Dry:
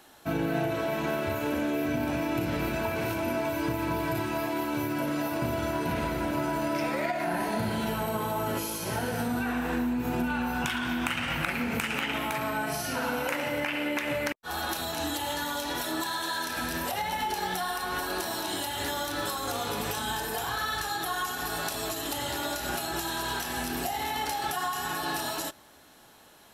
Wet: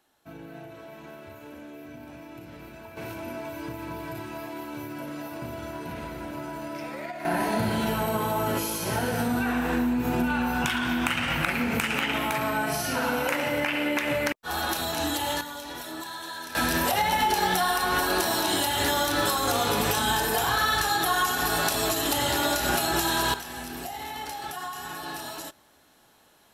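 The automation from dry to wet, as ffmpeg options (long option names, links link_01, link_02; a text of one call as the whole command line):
ffmpeg -i in.wav -af "asetnsamples=nb_out_samples=441:pad=0,asendcmd='2.97 volume volume -6.5dB;7.25 volume volume 3.5dB;15.41 volume volume -5.5dB;16.55 volume volume 7dB;23.34 volume volume -4.5dB',volume=-14.5dB" out.wav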